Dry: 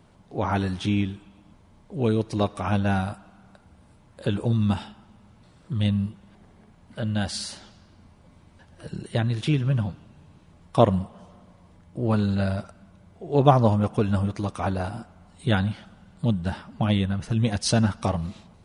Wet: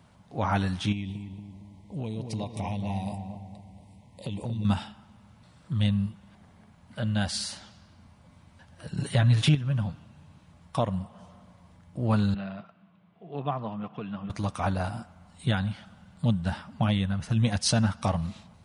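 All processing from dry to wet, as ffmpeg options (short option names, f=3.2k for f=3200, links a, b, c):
-filter_complex "[0:a]asettb=1/sr,asplit=3[a][b][c];[a]atrim=end=0.924[d];[b]atrim=start=0.92:end=4.65,asetpts=PTS-STARTPTS,afade=t=in:d=0.004:c=qsin,afade=t=out:st=3.726:d=0.004:c=qsin,asuperstop=centerf=1400:order=12:qfactor=1.7,acompressor=threshold=-27dB:ratio=6:attack=3.2:release=140:knee=1:detection=peak,asplit=2[e][f];[f]adelay=231,lowpass=f=870:p=1,volume=-5dB,asplit=2[g][h];[h]adelay=231,lowpass=f=870:p=1,volume=0.54,asplit=2[i][j];[j]adelay=231,lowpass=f=870:p=1,volume=0.54,asplit=2[k][l];[l]adelay=231,lowpass=f=870:p=1,volume=0.54,asplit=2[m][n];[n]adelay=231,lowpass=f=870:p=1,volume=0.54,asplit=2[o][p];[p]adelay=231,lowpass=f=870:p=1,volume=0.54,asplit=2[q][r];[r]adelay=231,lowpass=f=870:p=1,volume=0.54[s];[e][g][i][k][m][o][q][s]amix=inputs=8:normalize=0,atrim=end_sample=164493[t];[c]atrim=start=4.646[u];[d][t]acrossfade=d=0.004:c1=hsin:c2=qsin[v];[v][u]acrossfade=d=0.004:c1=qsin:c2=hsin,asettb=1/sr,asplit=3[w][x][y];[w]atrim=end=8.974[z];[x]atrim=start=8.97:end=9.55,asetpts=PTS-STARTPTS,afade=t=in:d=0.004:c=qsin,afade=t=out:st=0.576:d=0.004:c=qsin,aecho=1:1:7.2:0.78,atrim=end_sample=25578,acontrast=52[aa];[y]atrim=start=9.546[ab];[z][aa]acrossfade=d=0.004:c1=hsin:c2=qsin[ac];[ac][ab]acrossfade=d=0.004:c1=qsin:c2=hsin,asettb=1/sr,asplit=3[ad][ae][af];[ad]atrim=end=12.344[ag];[ae]atrim=start=12.34:end=14.3,asetpts=PTS-STARTPTS,afade=t=in:d=0.004:c=qsin,afade=t=out:st=1.956:d=0.004:c=qsin,acompressor=threshold=-27dB:ratio=1.5:attack=3.2:release=140:knee=1:detection=peak,highpass=f=170:w=0.5412,highpass=f=170:w=1.3066,equalizer=f=240:t=q:w=4:g=-9,equalizer=f=340:t=q:w=4:g=-4,equalizer=f=550:t=q:w=4:g=-10,equalizer=f=870:t=q:w=4:g=-7,equalizer=f=1.5k:t=q:w=4:g=-7,equalizer=f=2.1k:t=q:w=4:g=-5,lowpass=f=3k:w=0.5412,lowpass=f=3k:w=1.3066[ah];[af]atrim=start=14.296[ai];[ag][ah]acrossfade=d=0.004:c1=hsin:c2=qsin[aj];[aj][ai]acrossfade=d=0.004:c1=qsin:c2=hsin,highpass=55,alimiter=limit=-10.5dB:level=0:latency=1:release=422,equalizer=f=380:t=o:w=0.8:g=-9"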